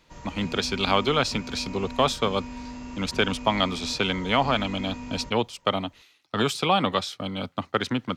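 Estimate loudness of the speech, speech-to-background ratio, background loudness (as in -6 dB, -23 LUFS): -26.0 LUFS, 12.5 dB, -38.5 LUFS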